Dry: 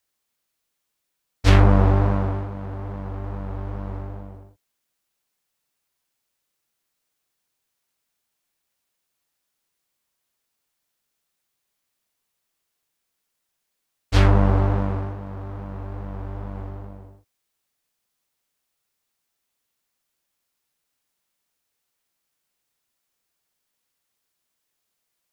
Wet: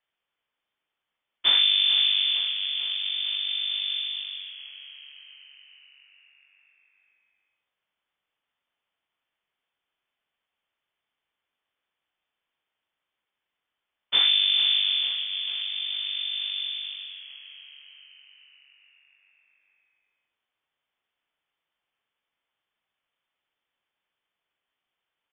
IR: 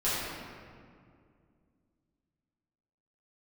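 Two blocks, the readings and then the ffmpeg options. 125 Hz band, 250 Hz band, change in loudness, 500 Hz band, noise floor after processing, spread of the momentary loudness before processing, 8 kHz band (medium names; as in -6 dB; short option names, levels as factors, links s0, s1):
under -40 dB, under -30 dB, -1.0 dB, under -25 dB, under -85 dBFS, 18 LU, no reading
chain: -filter_complex "[0:a]equalizer=f=490:t=o:w=0.77:g=4.5,acompressor=threshold=0.1:ratio=3,asplit=8[s0][s1][s2][s3][s4][s5][s6][s7];[s1]adelay=448,afreqshift=140,volume=0.224[s8];[s2]adelay=896,afreqshift=280,volume=0.135[s9];[s3]adelay=1344,afreqshift=420,volume=0.0804[s10];[s4]adelay=1792,afreqshift=560,volume=0.0484[s11];[s5]adelay=2240,afreqshift=700,volume=0.0292[s12];[s6]adelay=2688,afreqshift=840,volume=0.0174[s13];[s7]adelay=3136,afreqshift=980,volume=0.0105[s14];[s0][s8][s9][s10][s11][s12][s13][s14]amix=inputs=8:normalize=0,lowpass=f=3100:t=q:w=0.5098,lowpass=f=3100:t=q:w=0.6013,lowpass=f=3100:t=q:w=0.9,lowpass=f=3100:t=q:w=2.563,afreqshift=-3600"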